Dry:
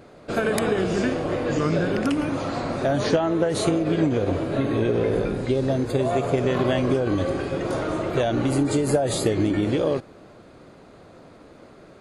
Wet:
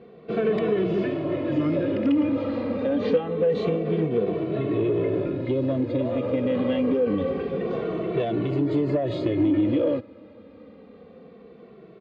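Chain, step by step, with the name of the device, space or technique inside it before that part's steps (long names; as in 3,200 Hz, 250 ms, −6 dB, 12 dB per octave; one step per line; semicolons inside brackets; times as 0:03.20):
barber-pole flanger into a guitar amplifier (barber-pole flanger 2.2 ms −0.26 Hz; soft clipping −19 dBFS, distortion −17 dB; loudspeaker in its box 82–3,400 Hz, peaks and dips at 210 Hz +6 dB, 300 Hz +5 dB, 480 Hz +7 dB, 810 Hz −6 dB, 1,500 Hz −8 dB)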